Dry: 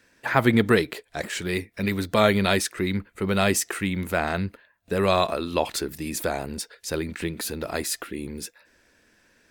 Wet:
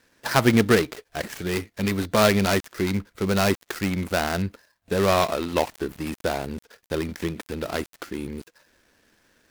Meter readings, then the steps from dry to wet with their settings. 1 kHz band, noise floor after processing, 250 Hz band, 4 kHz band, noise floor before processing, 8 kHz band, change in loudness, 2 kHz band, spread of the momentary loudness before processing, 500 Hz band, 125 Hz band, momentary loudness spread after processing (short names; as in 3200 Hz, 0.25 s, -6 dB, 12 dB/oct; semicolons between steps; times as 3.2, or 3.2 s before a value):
+0.5 dB, -72 dBFS, +1.0 dB, 0.0 dB, -63 dBFS, -3.5 dB, +0.5 dB, -0.5 dB, 13 LU, +1.0 dB, +1.5 dB, 14 LU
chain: switching dead time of 0.16 ms; gain +1.5 dB